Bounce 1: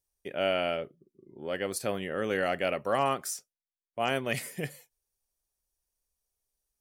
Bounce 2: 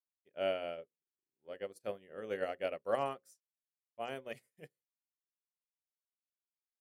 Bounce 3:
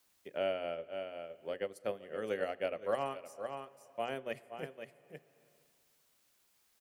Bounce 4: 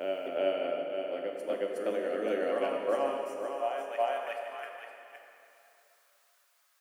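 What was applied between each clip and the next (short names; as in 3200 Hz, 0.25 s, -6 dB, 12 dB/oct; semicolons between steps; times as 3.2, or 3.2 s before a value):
notches 60/120/180/240/300/360/420/480/540 Hz; dynamic EQ 490 Hz, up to +7 dB, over -43 dBFS, Q 1.6; upward expander 2.5:1, over -46 dBFS; gain -7 dB
echo 0.515 s -14.5 dB; on a send at -21 dB: reverb RT60 1.9 s, pre-delay 7 ms; on the sum: three-band squash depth 70%; gain +2.5 dB
high-pass sweep 290 Hz -> 1200 Hz, 3.34–4.56; on a send: reverse echo 0.366 s -3.5 dB; on the sum: plate-style reverb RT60 2.9 s, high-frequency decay 0.8×, DRR 2 dB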